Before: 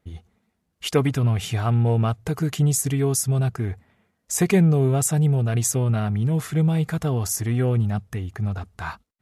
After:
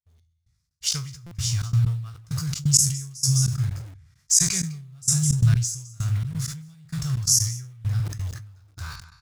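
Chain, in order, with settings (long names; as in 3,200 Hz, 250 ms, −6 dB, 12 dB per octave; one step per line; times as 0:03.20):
peak hold with a decay on every bin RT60 0.39 s
dynamic equaliser 5,800 Hz, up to +4 dB, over −34 dBFS, Q 0.95
on a send: single-tap delay 206 ms −10 dB
0:05.30–0:05.75: on the sum: leveller curve on the samples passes 2
drawn EQ curve 140 Hz 0 dB, 230 Hz −28 dB, 440 Hz −29 dB, 800 Hz −23 dB, 1,200 Hz −10 dB, 3,000 Hz −10 dB, 5,200 Hz +9 dB, 13,000 Hz −6 dB
in parallel at −7 dB: bit-depth reduction 6 bits, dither none
on the sum: gate pattern "....xx.x" 130 BPM −24 dB
buffer that repeats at 0:01.26, samples 256, times 8
level that may fall only so fast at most 73 dB per second
level −3 dB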